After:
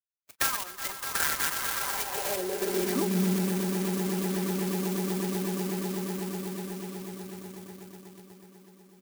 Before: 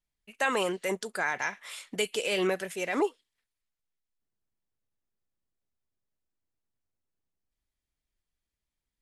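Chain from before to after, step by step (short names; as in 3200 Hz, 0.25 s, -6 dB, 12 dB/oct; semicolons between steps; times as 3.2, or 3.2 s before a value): bin magnitudes rounded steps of 30 dB; rippled Chebyshev low-pass 7400 Hz, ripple 3 dB; comb 5.1 ms, depth 60%; low-pass opened by the level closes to 1300 Hz, open at -30.5 dBFS; gate -55 dBFS, range -15 dB; swelling echo 0.123 s, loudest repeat 8, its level -10.5 dB; in parallel at -6.5 dB: bit-crush 8-bit; on the sum: resonant low shelf 410 Hz +6.5 dB, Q 1.5; compressor 10:1, threshold -27 dBFS, peak gain reduction 14 dB; high-pass sweep 1300 Hz -> 100 Hz, 1.76–3.62; clock jitter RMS 0.11 ms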